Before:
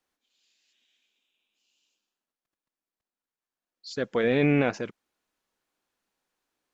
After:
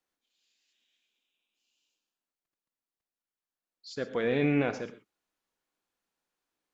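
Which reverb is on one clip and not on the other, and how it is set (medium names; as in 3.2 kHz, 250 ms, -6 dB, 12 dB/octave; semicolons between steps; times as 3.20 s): gated-style reverb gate 150 ms flat, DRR 10 dB; trim -5 dB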